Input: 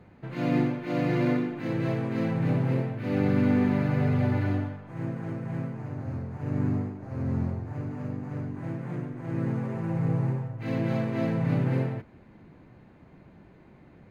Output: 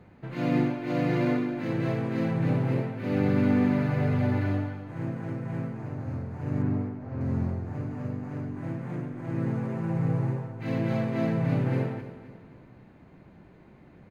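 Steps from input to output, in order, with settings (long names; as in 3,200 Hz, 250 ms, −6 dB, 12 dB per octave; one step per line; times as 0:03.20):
0:06.62–0:07.21: high-frequency loss of the air 150 metres
on a send: repeating echo 262 ms, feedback 41%, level −13.5 dB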